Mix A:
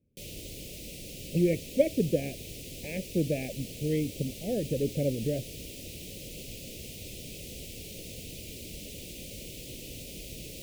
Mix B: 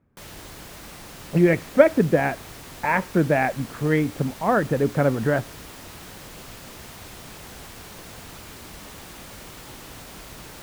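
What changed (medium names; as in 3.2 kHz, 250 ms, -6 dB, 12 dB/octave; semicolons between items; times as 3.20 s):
speech +7.0 dB; master: remove elliptic band-stop 550–2500 Hz, stop band 70 dB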